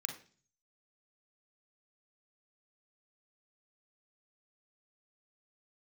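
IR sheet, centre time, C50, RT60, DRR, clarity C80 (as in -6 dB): 18 ms, 8.0 dB, 0.40 s, 3.5 dB, 13.5 dB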